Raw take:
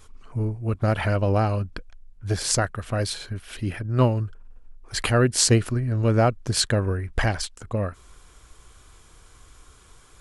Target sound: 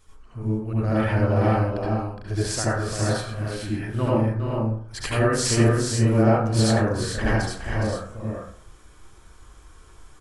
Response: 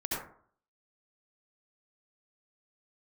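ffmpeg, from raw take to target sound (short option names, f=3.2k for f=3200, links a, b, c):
-filter_complex "[0:a]aecho=1:1:88|414|450:0.141|0.422|0.422[a];[1:a]atrim=start_sample=2205[b];[a][b]afir=irnorm=-1:irlink=0,volume=-6dB"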